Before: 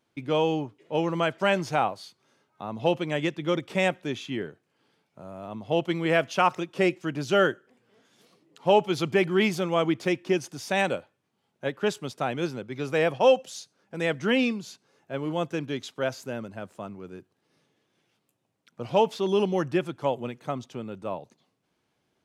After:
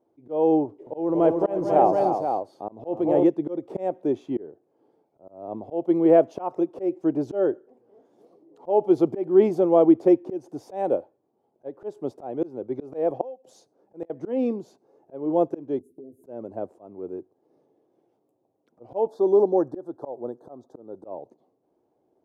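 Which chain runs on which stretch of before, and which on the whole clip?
0:00.65–0:03.24: transient designer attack −4 dB, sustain +5 dB + multi-tap delay 216/296/492 ms −9/−7.5/−6.5 dB
0:13.10–0:14.10: high-pass filter 63 Hz + gate with flip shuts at −16 dBFS, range −28 dB
0:15.79–0:16.24: Chebyshev band-stop filter 380–9,300 Hz, order 4 + double-tracking delay 12 ms −2 dB + downward compressor 16 to 1, threshold −46 dBFS
0:19.07–0:21.04: Chebyshev band-stop filter 1,700–3,600 Hz, order 3 + low-shelf EQ 370 Hz −6.5 dB
whole clip: drawn EQ curve 190 Hz 0 dB, 330 Hz +14 dB, 790 Hz +10 dB, 1,400 Hz −10 dB, 2,800 Hz −21 dB; volume swells 267 ms; high-shelf EQ 3,000 Hz +9.5 dB; level −3.5 dB

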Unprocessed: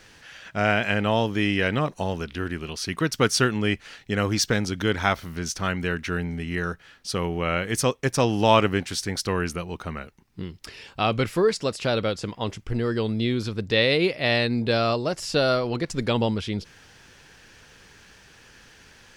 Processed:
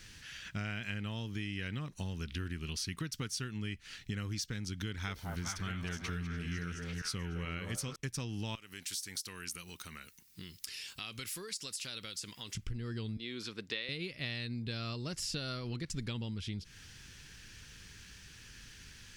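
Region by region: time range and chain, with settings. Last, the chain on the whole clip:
0:04.86–0:07.96: delay that plays each chunk backwards 432 ms, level −9 dB + echo through a band-pass that steps 211 ms, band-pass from 630 Hz, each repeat 0.7 octaves, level −1 dB
0:08.55–0:12.55: RIAA equalisation recording + downward compressor 2.5 to 1, threshold −41 dBFS
0:13.17–0:13.89: high-pass filter 430 Hz + high-shelf EQ 4,200 Hz −8 dB
whole clip: guitar amp tone stack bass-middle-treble 6-0-2; downward compressor 12 to 1, threshold −50 dBFS; level +15 dB

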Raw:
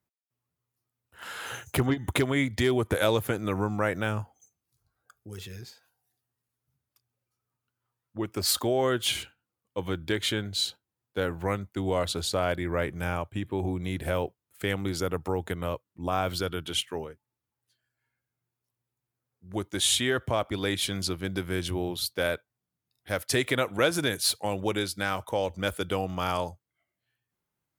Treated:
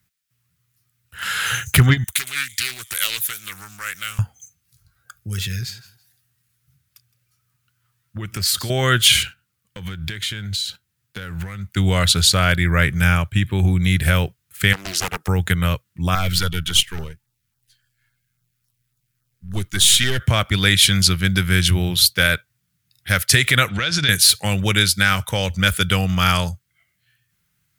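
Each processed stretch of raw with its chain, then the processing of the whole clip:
0:02.04–0:04.19: first-order pre-emphasis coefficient 0.97 + delay with a high-pass on its return 112 ms, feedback 46%, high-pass 4,900 Hz, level −15 dB + highs frequency-modulated by the lows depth 0.48 ms
0:05.52–0:08.70: repeating echo 165 ms, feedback 22%, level −19 dB + downward compressor 3 to 1, threshold −36 dBFS
0:09.22–0:11.70: downward compressor 10 to 1, threshold −42 dBFS + leveller curve on the samples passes 1
0:14.73–0:15.28: high-pass filter 350 Hz 24 dB per octave + parametric band 2,100 Hz −6.5 dB 2.1 octaves + highs frequency-modulated by the lows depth 0.76 ms
0:16.15–0:20.20: gain on one half-wave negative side −7 dB + auto-filter notch saw down 3.6 Hz 440–2,900 Hz
0:23.69–0:24.09: downward compressor 16 to 1, threshold −29 dBFS + low-pass with resonance 4,700 Hz, resonance Q 2
whole clip: flat-topped bell 510 Hz −15 dB 2.4 octaves; boost into a limiter +18 dB; level −1 dB

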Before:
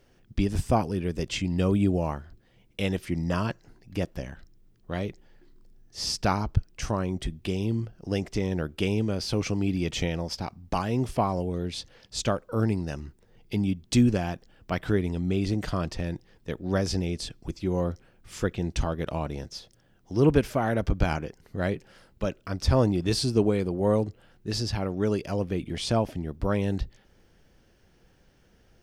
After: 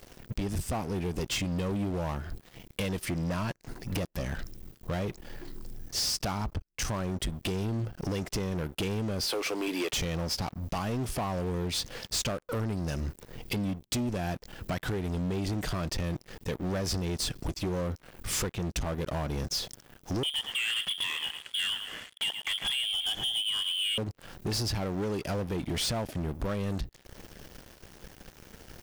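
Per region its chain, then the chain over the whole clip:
0:09.26–0:09.93: high-pass filter 370 Hz 24 dB per octave + parametric band 6,300 Hz −9 dB 0.53 octaves
0:20.23–0:23.98: low-shelf EQ 250 Hz −9.5 dB + voice inversion scrambler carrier 3,400 Hz + repeating echo 111 ms, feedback 28%, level −17 dB
whole clip: downward compressor 12 to 1, threshold −38 dBFS; high-shelf EQ 8,800 Hz +10.5 dB; leveller curve on the samples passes 5; level −4 dB

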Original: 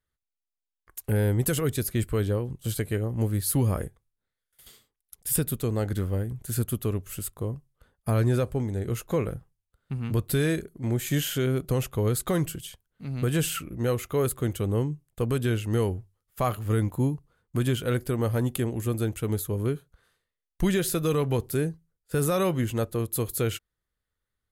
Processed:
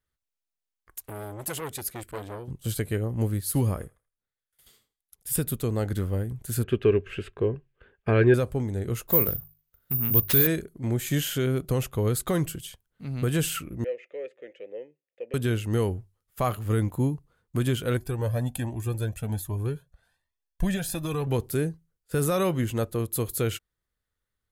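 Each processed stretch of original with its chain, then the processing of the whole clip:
0:01.06–0:02.48: low-shelf EQ 310 Hz −11 dB + saturating transformer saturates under 1,700 Hz
0:03.34–0:05.43: feedback echo with a high-pass in the loop 79 ms, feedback 32%, high-pass 690 Hz, level −20 dB + expander for the loud parts, over −34 dBFS
0:06.63–0:08.34: low-pass with resonance 2,600 Hz, resonance Q 3.5 + hollow resonant body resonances 400/1,600 Hz, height 14 dB, ringing for 35 ms
0:09.08–0:10.47: mains-hum notches 50/100/150 Hz + bad sample-rate conversion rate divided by 3×, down none, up zero stuff
0:13.84–0:15.34: formant filter e + loudspeaker in its box 300–6,100 Hz, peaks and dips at 1,000 Hz +4 dB, 1,500 Hz −4 dB, 2,200 Hz +9 dB, 4,100 Hz −6 dB
0:17.97–0:21.27: parametric band 510 Hz +4.5 dB 1.4 octaves + comb filter 1.2 ms, depth 51% + flanger whose copies keep moving one way rising 1.3 Hz
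whole clip: no processing

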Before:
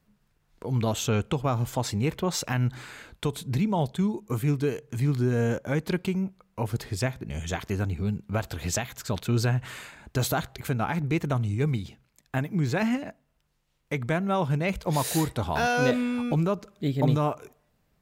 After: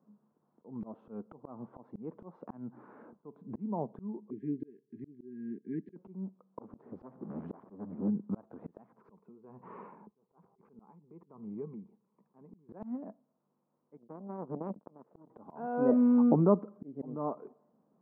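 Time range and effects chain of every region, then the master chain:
0:04.30–0:05.96: linear-phase brick-wall band-stop 430–1,600 Hz + low-shelf EQ 300 Hz −11.5 dB
0:06.61–0:08.08: converter with a step at zero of −37 dBFS + highs frequency-modulated by the lows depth 0.91 ms
0:08.98–0:12.69: EQ curve with evenly spaced ripples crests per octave 0.8, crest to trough 9 dB + downward compressor 16 to 1, threshold −29 dBFS + amplitude tremolo 1.2 Hz, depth 85%
0:13.97–0:15.30: parametric band 2,100 Hz −14.5 dB 3 octaves + power curve on the samples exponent 3 + envelope flattener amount 50%
whole clip: Chebyshev band-pass filter 210–1,100 Hz, order 3; low-shelf EQ 280 Hz +10.5 dB; volume swells 706 ms

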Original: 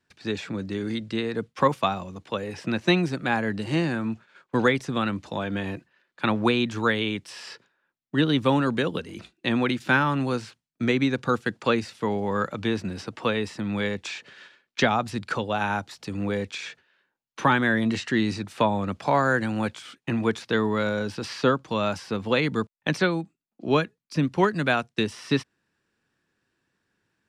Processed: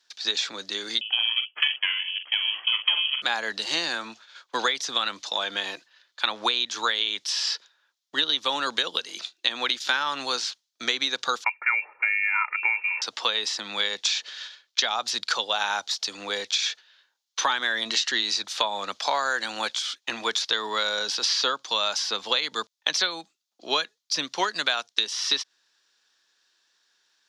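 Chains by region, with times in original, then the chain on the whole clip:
0:01.01–0:03.22: ring modulation 390 Hz + double-tracking delay 45 ms −9 dB + voice inversion scrambler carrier 3,200 Hz
0:11.44–0:13.02: voice inversion scrambler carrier 2,600 Hz + comb filter 2.2 ms, depth 67%
whole clip: high-pass filter 780 Hz 12 dB per octave; flat-topped bell 4,700 Hz +12.5 dB 1.3 octaves; downward compressor 6 to 1, threshold −25 dBFS; level +4.5 dB

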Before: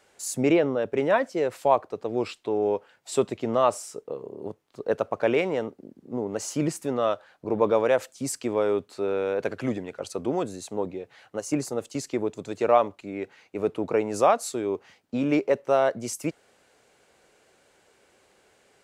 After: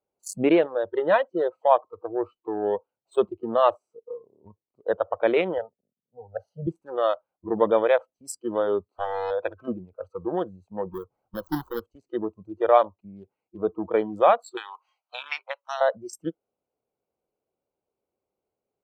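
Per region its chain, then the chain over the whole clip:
0:05.58–0:06.67: phaser with its sweep stopped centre 1,600 Hz, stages 8 + multiband upward and downward expander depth 100%
0:08.89–0:09.31: low-shelf EQ 150 Hz −10 dB + transient designer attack +2 dB, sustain −2 dB + highs frequency-modulated by the lows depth 0.92 ms
0:10.92–0:11.80: each half-wave held at its own peak + parametric band 3,000 Hz −9 dB 1.4 octaves + downward compressor 2 to 1, threshold −26 dBFS
0:14.57–0:15.81: high-pass filter 810 Hz 24 dB per octave + high-shelf EQ 2,600 Hz +10 dB + multiband upward and downward compressor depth 100%
whole clip: adaptive Wiener filter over 25 samples; dynamic equaliser 130 Hz, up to −5 dB, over −44 dBFS, Q 1.7; noise reduction from a noise print of the clip's start 23 dB; level +2.5 dB

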